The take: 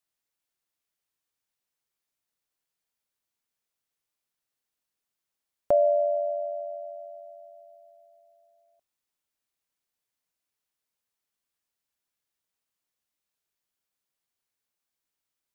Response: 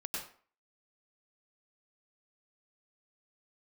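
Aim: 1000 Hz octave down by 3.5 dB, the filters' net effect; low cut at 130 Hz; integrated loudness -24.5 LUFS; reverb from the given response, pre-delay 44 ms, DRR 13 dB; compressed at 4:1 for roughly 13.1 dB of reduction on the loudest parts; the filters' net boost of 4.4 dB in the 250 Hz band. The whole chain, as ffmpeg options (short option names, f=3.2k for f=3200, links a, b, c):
-filter_complex "[0:a]highpass=130,equalizer=f=250:t=o:g=6.5,equalizer=f=1k:t=o:g=-9,acompressor=threshold=-36dB:ratio=4,asplit=2[a][b];[1:a]atrim=start_sample=2205,adelay=44[c];[b][c]afir=irnorm=-1:irlink=0,volume=-14.5dB[d];[a][d]amix=inputs=2:normalize=0,volume=15.5dB"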